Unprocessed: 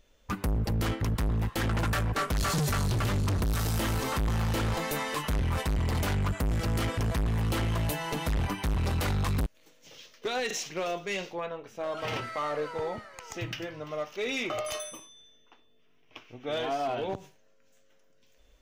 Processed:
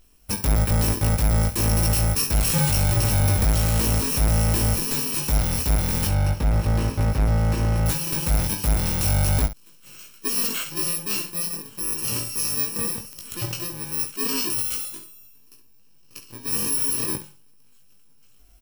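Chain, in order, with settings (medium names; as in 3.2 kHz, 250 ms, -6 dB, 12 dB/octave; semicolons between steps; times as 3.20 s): bit-reversed sample order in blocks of 64 samples; 6.07–7.86 s: low-pass 2.1 kHz 6 dB/octave; early reflections 19 ms -3.5 dB, 68 ms -11.5 dB; clicks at 13.13 s, -24 dBFS; trim +5 dB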